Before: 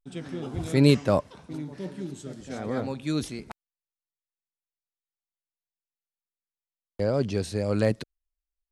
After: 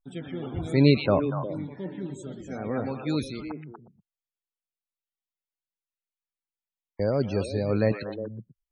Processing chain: delay with a stepping band-pass 0.12 s, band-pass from 2700 Hz, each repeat -1.4 oct, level -1.5 dB; loudest bins only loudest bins 64

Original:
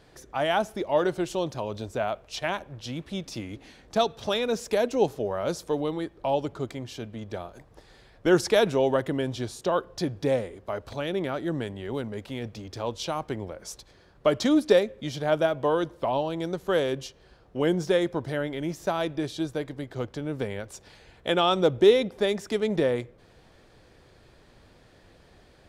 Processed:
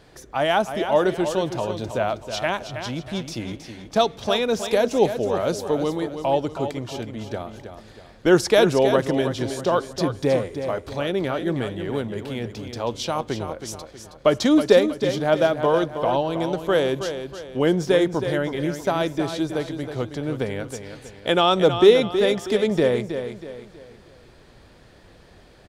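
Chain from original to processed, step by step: feedback echo 0.32 s, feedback 39%, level -9 dB; gain +4.5 dB

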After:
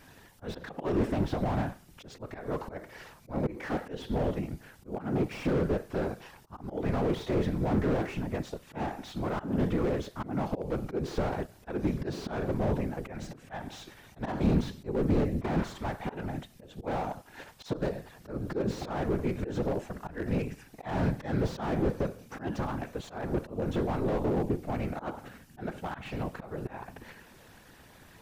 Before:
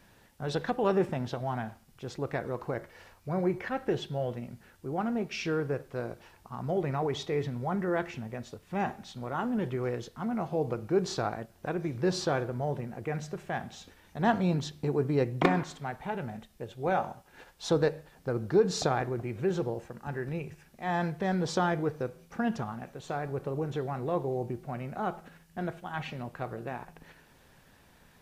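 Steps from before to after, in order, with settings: auto swell 0.242 s; whisperiser; slew limiter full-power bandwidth 12 Hz; gain +5.5 dB

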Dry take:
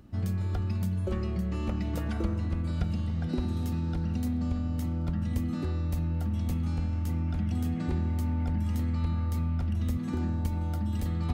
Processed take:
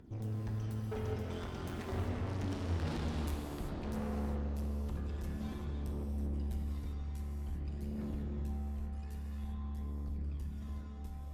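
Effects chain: Doppler pass-by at 2.76, 50 m/s, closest 14 m; in parallel at -3 dB: vocal rider within 4 dB; on the sum: phaser 0.5 Hz, delay 2.5 ms, feedback 59%; tube stage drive 43 dB, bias 0.35; non-linear reverb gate 0.41 s flat, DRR 0 dB; gain +5.5 dB

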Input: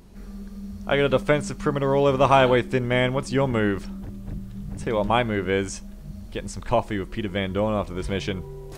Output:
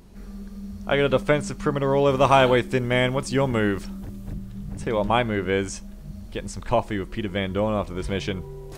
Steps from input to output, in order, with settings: 2.1–4.33 high shelf 4900 Hz +5.5 dB

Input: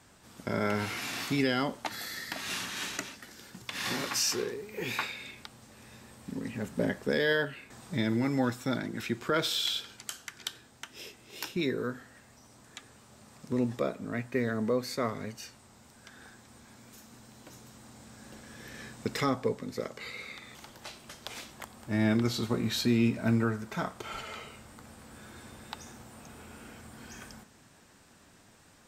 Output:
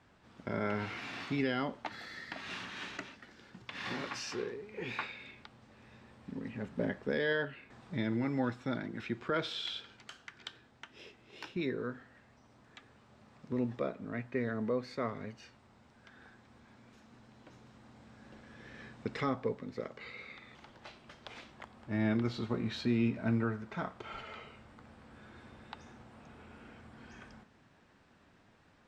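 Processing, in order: LPF 3200 Hz 12 dB/oct; gain -4.5 dB

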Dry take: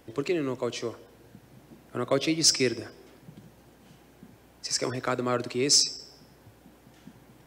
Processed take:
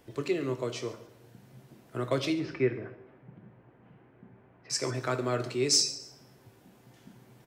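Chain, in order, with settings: 2.33–4.7 LPF 2200 Hz 24 dB/oct; frequency-shifting echo 0.139 s, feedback 31%, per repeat +64 Hz, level -21 dB; on a send at -6 dB: reverb RT60 0.60 s, pre-delay 4 ms; on the sum: gain -4 dB

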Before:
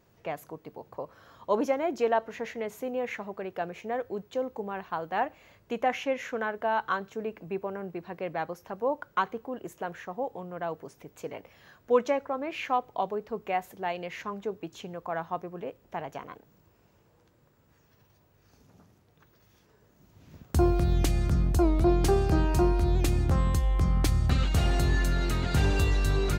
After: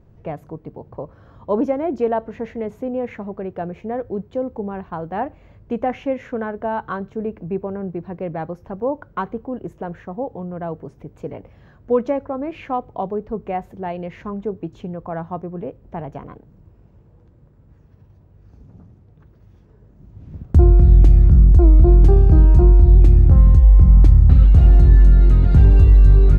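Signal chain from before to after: tilt -4.5 dB/oct; in parallel at +2.5 dB: compressor, threshold -15 dBFS, peak gain reduction 12 dB; on the sum: gain -5.5 dB

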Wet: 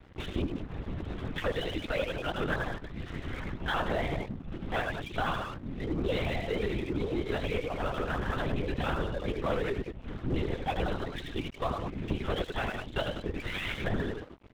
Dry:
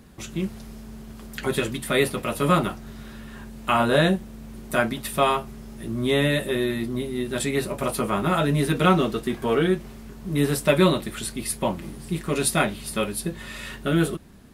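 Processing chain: repeated pitch sweeps +5 st, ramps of 0.17 s; recorder AGC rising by 5.6 dB/s; on a send: loudspeakers at several distances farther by 30 m -3 dB, 63 m -8 dB; on the sum: compressor 3:1, threshold -31 dBFS, peak gain reduction 13.5 dB; reverb removal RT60 0.97 s; hard clip -27 dBFS, distortion -16 dB; LPC vocoder at 8 kHz whisper; crossover distortion -51 dBFS; gain +3 dB

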